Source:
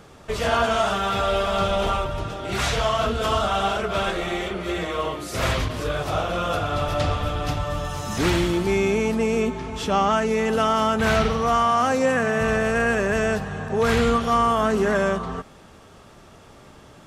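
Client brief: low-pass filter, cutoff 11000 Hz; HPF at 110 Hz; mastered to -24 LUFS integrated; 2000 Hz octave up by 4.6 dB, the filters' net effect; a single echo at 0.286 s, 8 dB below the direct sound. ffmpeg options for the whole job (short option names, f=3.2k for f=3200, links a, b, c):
-af "highpass=110,lowpass=11k,equalizer=f=2k:t=o:g=6,aecho=1:1:286:0.398,volume=-3.5dB"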